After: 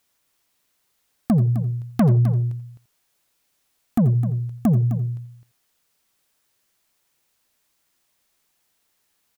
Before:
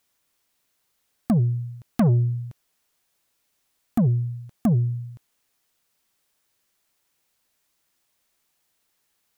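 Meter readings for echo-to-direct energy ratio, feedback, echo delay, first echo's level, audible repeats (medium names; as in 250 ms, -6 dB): -9.5 dB, no regular repeats, 84 ms, -17.0 dB, 3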